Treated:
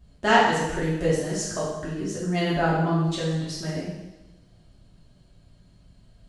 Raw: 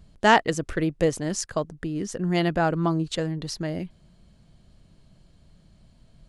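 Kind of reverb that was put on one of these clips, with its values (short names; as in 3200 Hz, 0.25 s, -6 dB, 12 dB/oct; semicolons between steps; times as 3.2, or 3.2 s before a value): two-slope reverb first 1 s, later 2.8 s, from -28 dB, DRR -8 dB; gain -8 dB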